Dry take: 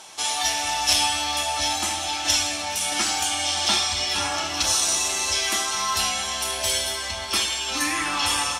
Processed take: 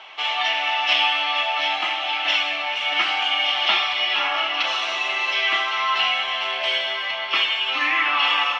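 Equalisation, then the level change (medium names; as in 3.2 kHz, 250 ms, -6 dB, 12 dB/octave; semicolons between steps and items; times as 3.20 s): cabinet simulation 440–3400 Hz, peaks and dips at 680 Hz +4 dB, 1.2 kHz +7 dB, 2.1 kHz +9 dB, 2.9 kHz +10 dB; 0.0 dB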